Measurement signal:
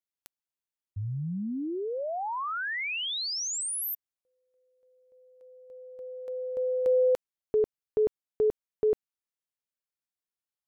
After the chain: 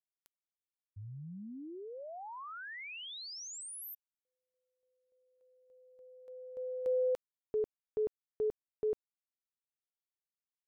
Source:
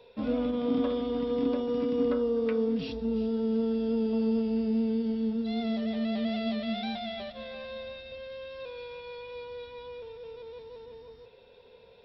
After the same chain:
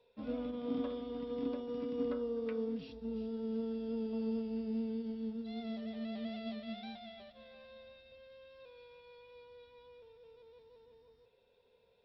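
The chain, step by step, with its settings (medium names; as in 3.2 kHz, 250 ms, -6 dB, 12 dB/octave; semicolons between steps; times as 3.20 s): upward expansion 1.5:1, over -38 dBFS; trim -8 dB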